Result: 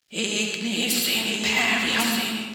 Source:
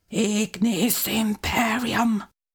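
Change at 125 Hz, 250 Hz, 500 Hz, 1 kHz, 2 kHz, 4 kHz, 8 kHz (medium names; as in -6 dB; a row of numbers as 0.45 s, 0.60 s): -7.0 dB, -5.5 dB, -3.0 dB, -4.0 dB, +5.0 dB, +7.5 dB, +2.0 dB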